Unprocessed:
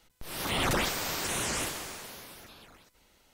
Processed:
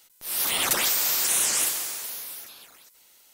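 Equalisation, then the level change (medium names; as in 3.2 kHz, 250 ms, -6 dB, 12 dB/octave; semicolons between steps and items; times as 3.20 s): RIAA curve recording; 0.0 dB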